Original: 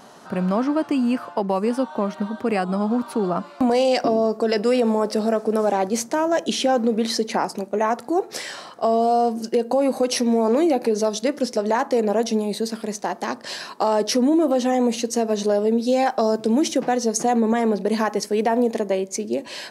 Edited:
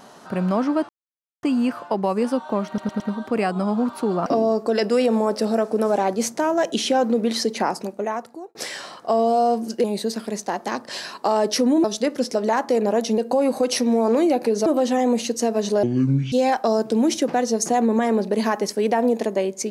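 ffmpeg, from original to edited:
-filter_complex "[0:a]asplit=13[s0][s1][s2][s3][s4][s5][s6][s7][s8][s9][s10][s11][s12];[s0]atrim=end=0.89,asetpts=PTS-STARTPTS,afade=t=out:st=0.886:d=0.004:c=hsin,apad=pad_dur=0.54[s13];[s1]atrim=start=0.89:end=2.242,asetpts=PTS-STARTPTS,afade=t=in:d=0.004:c=hsin[s14];[s2]atrim=start=2.128:end=2.242[s15];[s3]atrim=start=2.128:end=2.242[s16];[s4]atrim=start=2.128:end=3.392[s17];[s5]atrim=start=3.998:end=8.29,asetpts=PTS-STARTPTS,afade=t=out:st=3.492:d=0.8[s18];[s6]atrim=start=8.29:end=9.582,asetpts=PTS-STARTPTS,afade=t=in:d=0.004:c=hsin[s19];[s7]atrim=start=12.398:end=14.402[s20];[s8]atrim=start=11.058:end=12.402[s21];[s9]atrim=start=9.578:end=11.062[s22];[s10]atrim=start=14.398:end=15.574[s23];[s11]atrim=start=15.57:end=15.86,asetpts=PTS-STARTPTS,asetrate=26019,aresample=44100,atrim=end_sample=21676,asetpts=PTS-STARTPTS[s24];[s12]atrim=start=15.856[s25];[s13][s14]concat=n=2:v=0:a=1[s26];[s26][s15]acrossfade=d=0.004:c1=hsin:c2=hsin[s27];[s27][s16]acrossfade=d=0.004:c1=hsin:c2=hsin[s28];[s28][s17]acrossfade=d=0.004:c1=hsin:c2=hsin[s29];[s18][s19]concat=n=2:v=0:a=1[s30];[s29][s30]acrossfade=d=0.004:c1=hsin:c2=hsin[s31];[s31][s20]acrossfade=d=0.004:c1=hsin:c2=hsin[s32];[s32][s21]acrossfade=d=0.004:c1=hsin:c2=hsin[s33];[s33][s22]acrossfade=d=0.004:c1=hsin:c2=hsin[s34];[s34][s23]acrossfade=d=0.004:c1=hsin:c2=hsin[s35];[s35][s24]acrossfade=d=0.004:c1=hsin:c2=hsin[s36];[s36][s25]acrossfade=d=0.004:c1=hsin:c2=hsin"

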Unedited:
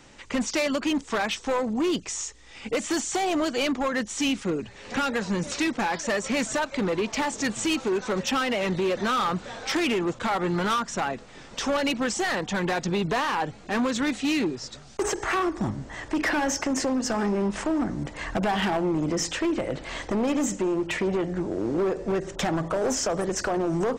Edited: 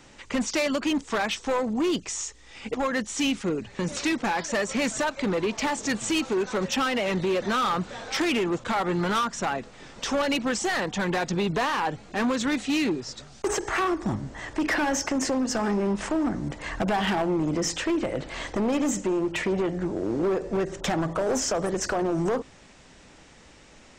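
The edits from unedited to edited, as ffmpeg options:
-filter_complex "[0:a]asplit=3[s0][s1][s2];[s0]atrim=end=2.742[s3];[s1]atrim=start=3.748:end=4.802[s4];[s2]atrim=start=5.338[s5];[s3][s4]acrossfade=d=0.004:c1=hsin:c2=hsin[s6];[s6][s5]acrossfade=d=0.004:c1=hsin:c2=hsin"

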